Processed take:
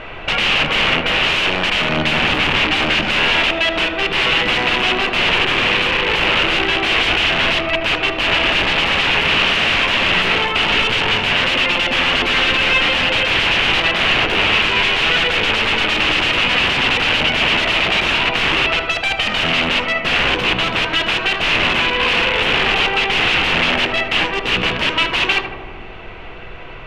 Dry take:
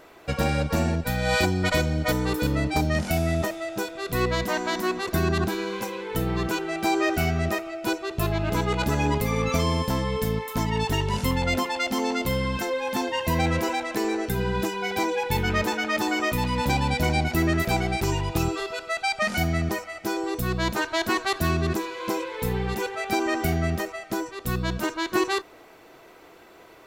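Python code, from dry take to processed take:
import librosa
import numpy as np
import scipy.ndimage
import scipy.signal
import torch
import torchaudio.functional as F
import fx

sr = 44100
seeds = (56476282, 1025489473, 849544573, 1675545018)

p1 = fx.highpass(x, sr, hz=680.0, slope=6)
p2 = fx.high_shelf(p1, sr, hz=2100.0, db=-7.0)
p3 = fx.rider(p2, sr, range_db=10, speed_s=0.5)
p4 = p2 + (p3 * librosa.db_to_amplitude(2.0))
p5 = (np.mod(10.0 ** (23.0 / 20.0) * p4 + 1.0, 2.0) - 1.0) / 10.0 ** (23.0 / 20.0)
p6 = fx.dmg_noise_colour(p5, sr, seeds[0], colour='brown', level_db=-44.0)
p7 = fx.lowpass_res(p6, sr, hz=2800.0, q=4.0)
p8 = p7 + fx.echo_filtered(p7, sr, ms=77, feedback_pct=80, hz=1600.0, wet_db=-7, dry=0)
y = p8 * librosa.db_to_amplitude(8.5)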